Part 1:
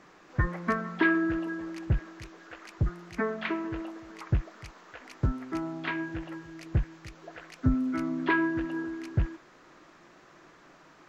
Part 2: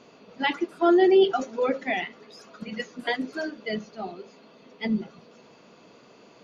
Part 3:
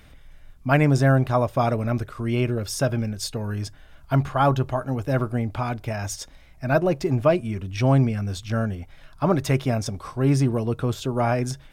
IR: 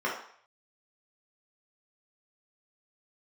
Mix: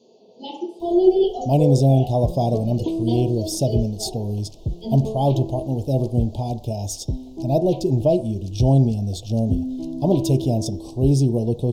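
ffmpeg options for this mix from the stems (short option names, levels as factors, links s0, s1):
-filter_complex "[0:a]adelay=1850,volume=1.19[s0];[1:a]highpass=f=300:p=1,volume=0.794,asplit=2[s1][s2];[s2]volume=0.473[s3];[2:a]adelay=800,volume=1.33,asplit=2[s4][s5];[s5]volume=0.0944[s6];[3:a]atrim=start_sample=2205[s7];[s3][s6]amix=inputs=2:normalize=0[s8];[s8][s7]afir=irnorm=-1:irlink=0[s9];[s0][s1][s4][s9]amix=inputs=4:normalize=0,asuperstop=centerf=1600:order=8:qfactor=0.64"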